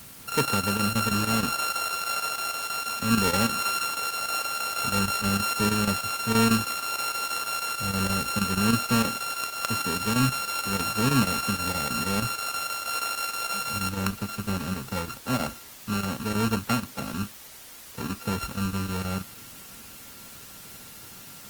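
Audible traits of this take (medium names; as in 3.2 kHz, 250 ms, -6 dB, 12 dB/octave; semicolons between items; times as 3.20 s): a buzz of ramps at a fixed pitch in blocks of 32 samples; chopped level 6.3 Hz, depth 60%, duty 85%; a quantiser's noise floor 8-bit, dither triangular; Opus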